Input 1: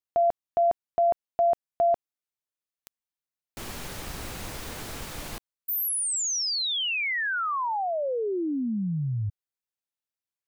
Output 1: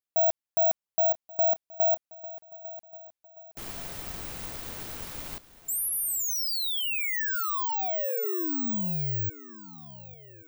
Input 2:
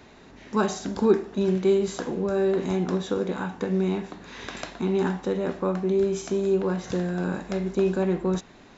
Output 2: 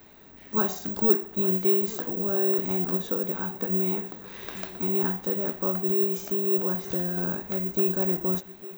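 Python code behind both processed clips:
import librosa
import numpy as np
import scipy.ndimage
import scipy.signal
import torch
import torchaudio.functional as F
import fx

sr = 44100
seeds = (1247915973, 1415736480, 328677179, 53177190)

y = fx.echo_swing(x, sr, ms=1131, ratio=3, feedback_pct=39, wet_db=-18.0)
y = (np.kron(y[::2], np.eye(2)[0]) * 2)[:len(y)]
y = F.gain(torch.from_numpy(y), -4.5).numpy()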